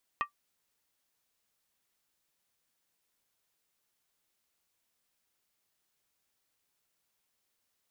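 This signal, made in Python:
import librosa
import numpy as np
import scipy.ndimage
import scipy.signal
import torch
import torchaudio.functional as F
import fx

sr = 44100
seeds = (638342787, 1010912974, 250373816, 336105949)

y = fx.strike_skin(sr, length_s=0.63, level_db=-23, hz=1170.0, decay_s=0.11, tilt_db=6, modes=5)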